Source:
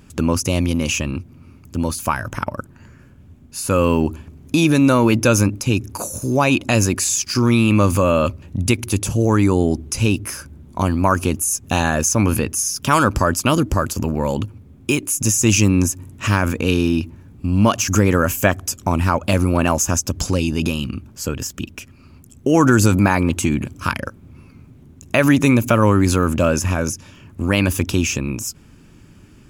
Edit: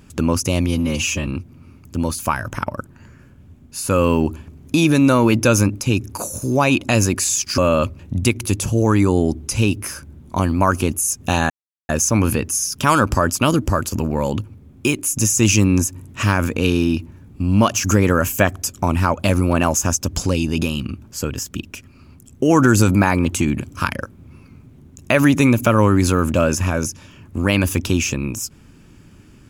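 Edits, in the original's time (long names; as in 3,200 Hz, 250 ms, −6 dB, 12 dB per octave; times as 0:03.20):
0:00.67–0:01.07: time-stretch 1.5×
0:07.38–0:08.01: remove
0:11.93: splice in silence 0.39 s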